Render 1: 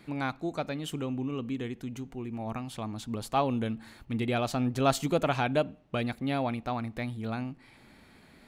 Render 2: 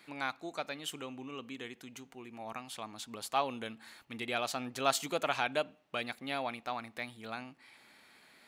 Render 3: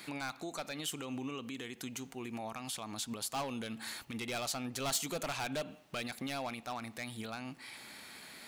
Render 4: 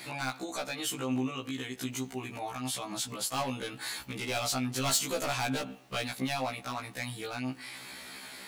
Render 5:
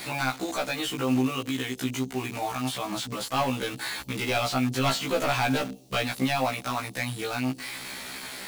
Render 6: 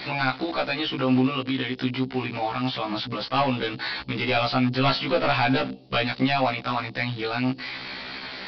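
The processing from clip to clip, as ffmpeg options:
-af "highpass=f=1200:p=1,volume=1.12"
-af "asoftclip=type=hard:threshold=0.0282,alimiter=level_in=7.08:limit=0.0631:level=0:latency=1:release=117,volume=0.141,bass=f=250:g=4,treble=f=4000:g=7,volume=2.51"
-af "afftfilt=real='re*1.73*eq(mod(b,3),0)':imag='im*1.73*eq(mod(b,3),0)':win_size=2048:overlap=0.75,volume=2.51"
-filter_complex "[0:a]acrossover=split=610|3800[s0][s1][s2];[s1]acrusher=bits=7:mix=0:aa=0.000001[s3];[s2]acompressor=threshold=0.00447:ratio=6[s4];[s0][s3][s4]amix=inputs=3:normalize=0,volume=2.24"
-af "aresample=11025,aresample=44100,volume=1.5"

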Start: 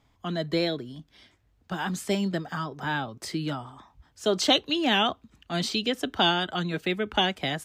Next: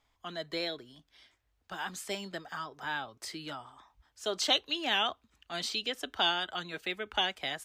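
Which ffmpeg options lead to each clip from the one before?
-af "equalizer=f=160:t=o:w=2.6:g=-14.5,volume=0.631"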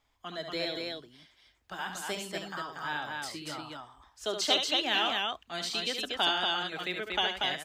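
-af "aecho=1:1:72.89|236.2:0.447|0.708"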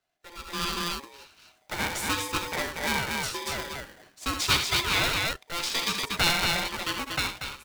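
-af "dynaudnorm=f=110:g=11:m=5.96,aeval=exprs='val(0)*sgn(sin(2*PI*690*n/s))':c=same,volume=0.398"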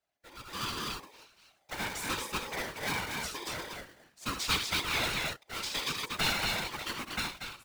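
-af "afftfilt=real='hypot(re,im)*cos(2*PI*random(0))':imag='hypot(re,im)*sin(2*PI*random(1))':win_size=512:overlap=0.75"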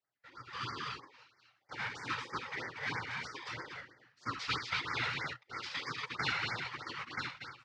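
-af "highpass=120,equalizer=f=120:t=q:w=4:g=9,equalizer=f=200:t=q:w=4:g=-9,equalizer=f=650:t=q:w=4:g=-9,equalizer=f=1300:t=q:w=4:g=5,equalizer=f=1900:t=q:w=4:g=6,equalizer=f=3700:t=q:w=4:g=-4,lowpass=f=4900:w=0.5412,lowpass=f=4900:w=1.3066,afftfilt=real='re*(1-between(b*sr/1024,270*pow(3300/270,0.5+0.5*sin(2*PI*3.1*pts/sr))/1.41,270*pow(3300/270,0.5+0.5*sin(2*PI*3.1*pts/sr))*1.41))':imag='im*(1-between(b*sr/1024,270*pow(3300/270,0.5+0.5*sin(2*PI*3.1*pts/sr))/1.41,270*pow(3300/270,0.5+0.5*sin(2*PI*3.1*pts/sr))*1.41))':win_size=1024:overlap=0.75,volume=0.631"

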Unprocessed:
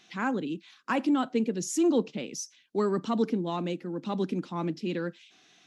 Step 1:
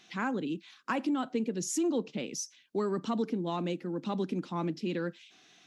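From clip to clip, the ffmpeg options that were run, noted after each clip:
-af "acompressor=threshold=0.0355:ratio=2.5"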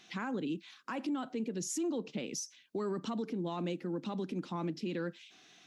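-af "alimiter=level_in=1.68:limit=0.0631:level=0:latency=1:release=97,volume=0.596"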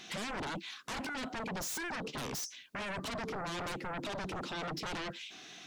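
-af "aeval=exprs='0.0398*sin(PI/2*4.47*val(0)/0.0398)':c=same,volume=0.422"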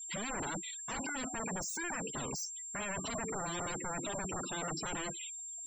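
-af "aeval=exprs='val(0)+0.00794*sin(2*PI*7400*n/s)':c=same,afftfilt=real='re*gte(hypot(re,im),0.0126)':imag='im*gte(hypot(re,im),0.0126)':win_size=1024:overlap=0.75"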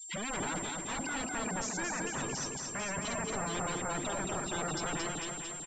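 -filter_complex "[0:a]asplit=2[s0][s1];[s1]aecho=0:1:223|446|669|892|1115|1338|1561|1784:0.631|0.366|0.212|0.123|0.0714|0.0414|0.024|0.0139[s2];[s0][s2]amix=inputs=2:normalize=0,volume=1.19" -ar 16000 -c:a g722

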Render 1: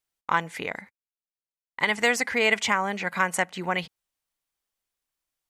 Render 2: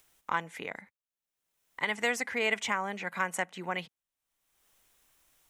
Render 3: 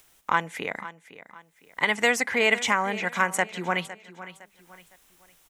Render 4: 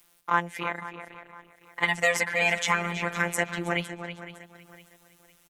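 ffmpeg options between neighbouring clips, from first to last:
-filter_complex "[0:a]acrossover=split=130|3300[s0][s1][s2];[s0]acompressor=threshold=0.00112:ratio=6[s3];[s3][s1][s2]amix=inputs=3:normalize=0,equalizer=f=4600:w=5:g=-6,acompressor=mode=upward:threshold=0.01:ratio=2.5,volume=0.447"
-af "aecho=1:1:509|1018|1527:0.168|0.0588|0.0206,volume=2.37"
-filter_complex "[0:a]asplit=2[s0][s1];[s1]adelay=323,lowpass=f=3600:p=1,volume=0.335,asplit=2[s2][s3];[s3]adelay=323,lowpass=f=3600:p=1,volume=0.24,asplit=2[s4][s5];[s5]adelay=323,lowpass=f=3600:p=1,volume=0.24[s6];[s0][s2][s4][s6]amix=inputs=4:normalize=0,afftfilt=real='hypot(re,im)*cos(PI*b)':imag='0':win_size=1024:overlap=0.75,volume=1.26" -ar 48000 -c:a libopus -b:a 24k

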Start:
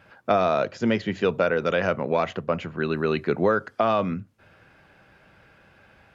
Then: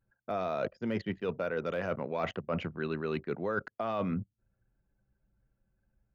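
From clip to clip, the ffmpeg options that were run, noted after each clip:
-af "deesser=1,anlmdn=2.51,areverse,acompressor=threshold=0.0355:ratio=16,areverse"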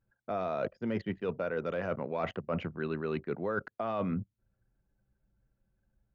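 -af "highshelf=f=3800:g=-8.5"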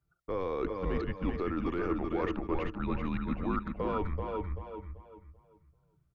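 -filter_complex "[0:a]asplit=2[s0][s1];[s1]aecho=0:1:381|762:0.355|0.0568[s2];[s0][s2]amix=inputs=2:normalize=0,afreqshift=-180,asplit=2[s3][s4];[s4]adelay=389,lowpass=f=4000:p=1,volume=0.631,asplit=2[s5][s6];[s6]adelay=389,lowpass=f=4000:p=1,volume=0.3,asplit=2[s7][s8];[s8]adelay=389,lowpass=f=4000:p=1,volume=0.3,asplit=2[s9][s10];[s10]adelay=389,lowpass=f=4000:p=1,volume=0.3[s11];[s5][s7][s9][s11]amix=inputs=4:normalize=0[s12];[s3][s12]amix=inputs=2:normalize=0"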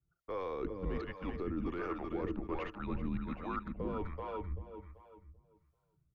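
-filter_complex "[0:a]acrossover=split=440[s0][s1];[s0]aeval=exprs='val(0)*(1-0.7/2+0.7/2*cos(2*PI*1.3*n/s))':c=same[s2];[s1]aeval=exprs='val(0)*(1-0.7/2-0.7/2*cos(2*PI*1.3*n/s))':c=same[s3];[s2][s3]amix=inputs=2:normalize=0,volume=0.794"

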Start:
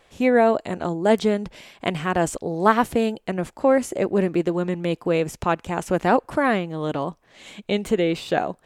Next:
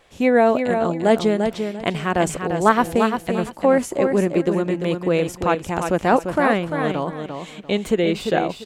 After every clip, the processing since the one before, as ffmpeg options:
-af "aecho=1:1:345|690|1035:0.473|0.109|0.025,volume=1.19"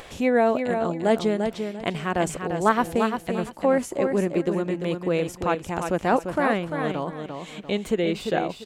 -af "acompressor=mode=upward:threshold=0.0562:ratio=2.5,volume=0.596"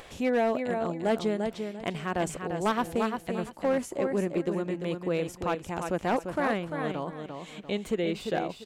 -af "volume=5.31,asoftclip=hard,volume=0.188,volume=0.562"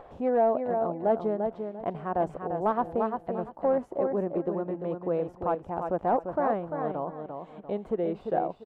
-af "firequalizer=gain_entry='entry(220,0);entry(720,8);entry(2200,-14);entry(6900,-26)':delay=0.05:min_phase=1,volume=0.708"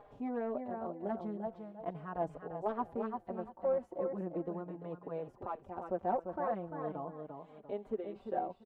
-filter_complex "[0:a]asplit=2[s0][s1];[s1]adelay=4.4,afreqshift=-0.4[s2];[s0][s2]amix=inputs=2:normalize=1,volume=0.501"

